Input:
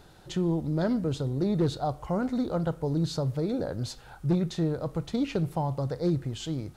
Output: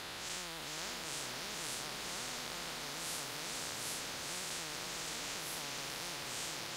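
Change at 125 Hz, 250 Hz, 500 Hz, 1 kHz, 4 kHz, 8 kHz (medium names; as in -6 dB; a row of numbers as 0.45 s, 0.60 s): -26.0 dB, -24.5 dB, -18.0 dB, -8.0 dB, +3.5 dB, +9.0 dB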